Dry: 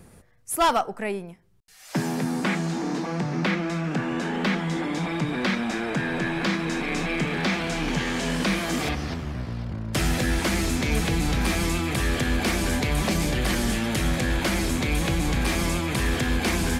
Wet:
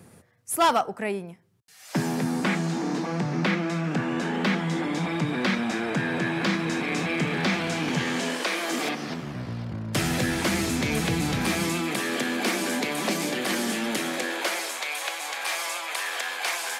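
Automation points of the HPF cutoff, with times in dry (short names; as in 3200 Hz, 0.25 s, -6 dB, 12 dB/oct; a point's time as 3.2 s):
HPF 24 dB/oct
8.04 s 91 Hz
8.45 s 390 Hz
9.52 s 92 Hz
11.45 s 92 Hz
12.04 s 220 Hz
13.96 s 220 Hz
14.82 s 640 Hz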